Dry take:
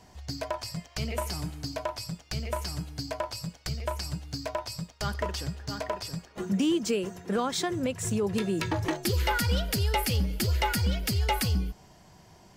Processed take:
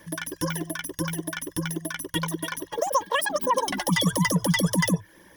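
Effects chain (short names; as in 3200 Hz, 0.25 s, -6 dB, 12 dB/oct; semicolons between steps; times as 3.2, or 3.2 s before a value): reverb removal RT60 0.61 s; speed mistake 33 rpm record played at 78 rpm; ripple EQ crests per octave 1.2, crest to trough 13 dB; gain +2 dB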